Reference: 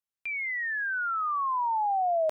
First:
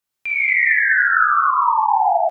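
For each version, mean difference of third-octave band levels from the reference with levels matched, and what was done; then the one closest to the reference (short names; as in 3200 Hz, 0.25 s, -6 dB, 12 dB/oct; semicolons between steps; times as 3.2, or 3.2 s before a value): 4.0 dB: in parallel at +1.5 dB: negative-ratio compressor -31 dBFS, ratio -0.5; on the sum: loudspeakers at several distances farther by 16 m -6 dB, 80 m -5 dB; non-linear reverb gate 0.29 s flat, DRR -4.5 dB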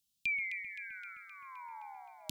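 10.0 dB: inverse Chebyshev band-stop 440–1900 Hz, stop band 40 dB; bell 1300 Hz +7.5 dB 2.2 oct; on a send: echo with dull and thin repeats by turns 0.13 s, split 2100 Hz, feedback 78%, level -6 dB; on the sum: gain +13 dB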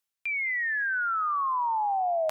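2.0 dB: tilt shelf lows -4 dB, about 870 Hz; reverse; upward compressor, threshold -33 dBFS; reverse; tape echo 0.207 s, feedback 30%, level -14 dB, low-pass 1500 Hz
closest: third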